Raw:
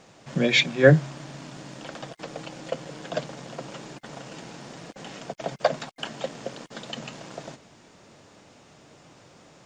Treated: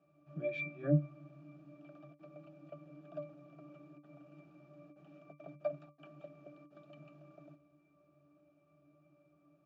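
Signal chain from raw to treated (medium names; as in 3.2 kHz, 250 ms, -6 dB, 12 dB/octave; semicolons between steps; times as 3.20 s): high-pass 180 Hz 12 dB/octave; pitch-class resonator D, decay 0.23 s; trim -2.5 dB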